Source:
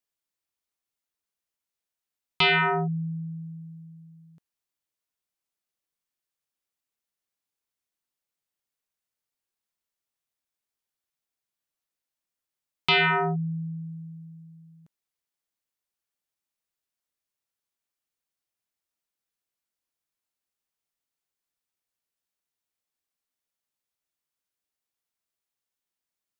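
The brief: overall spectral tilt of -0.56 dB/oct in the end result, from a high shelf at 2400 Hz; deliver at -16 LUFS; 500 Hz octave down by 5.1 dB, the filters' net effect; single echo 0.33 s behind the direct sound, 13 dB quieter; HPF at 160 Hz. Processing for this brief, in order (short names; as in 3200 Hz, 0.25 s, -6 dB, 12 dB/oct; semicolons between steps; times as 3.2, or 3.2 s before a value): HPF 160 Hz; bell 500 Hz -8.5 dB; high shelf 2400 Hz +8 dB; echo 0.33 s -13 dB; gain +5 dB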